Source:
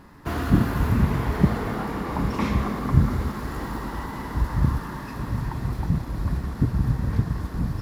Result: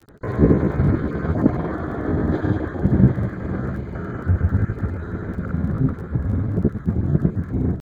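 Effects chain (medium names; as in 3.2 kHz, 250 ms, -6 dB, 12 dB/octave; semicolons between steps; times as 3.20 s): random holes in the spectrogram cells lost 22%; boxcar filter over 24 samples; peaking EQ 88 Hz +2.5 dB 0.54 oct; pitch shift +7 st; granulator, pitch spread up and down by 0 st; crackle 22 per s -42 dBFS; echo that smears into a reverb 622 ms, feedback 49%, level -11 dB; trim +4 dB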